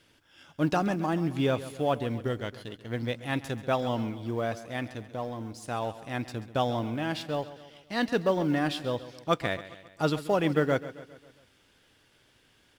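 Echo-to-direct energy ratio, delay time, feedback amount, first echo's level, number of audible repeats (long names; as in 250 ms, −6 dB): −13.5 dB, 135 ms, 53%, −15.0 dB, 4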